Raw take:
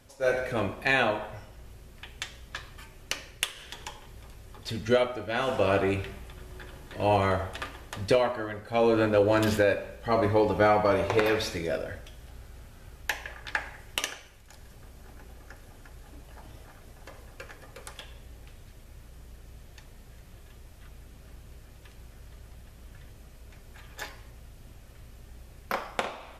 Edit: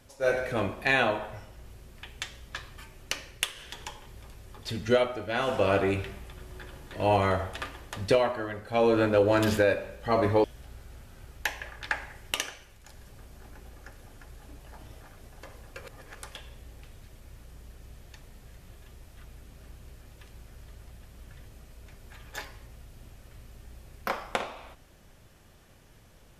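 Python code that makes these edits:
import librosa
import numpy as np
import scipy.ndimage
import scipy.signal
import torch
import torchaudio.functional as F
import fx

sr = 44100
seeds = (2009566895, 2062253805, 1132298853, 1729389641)

y = fx.edit(x, sr, fx.cut(start_s=10.44, length_s=1.64),
    fx.reverse_span(start_s=17.46, length_s=0.36), tone=tone)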